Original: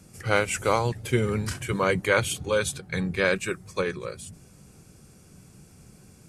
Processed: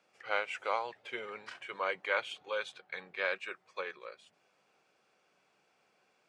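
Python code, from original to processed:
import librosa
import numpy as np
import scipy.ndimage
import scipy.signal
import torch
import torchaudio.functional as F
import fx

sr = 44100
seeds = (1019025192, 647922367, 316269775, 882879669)

y = scipy.signal.sosfilt(scipy.signal.cheby1(2, 1.0, [660.0, 3200.0], 'bandpass', fs=sr, output='sos'), x)
y = y * 10.0 ** (-7.5 / 20.0)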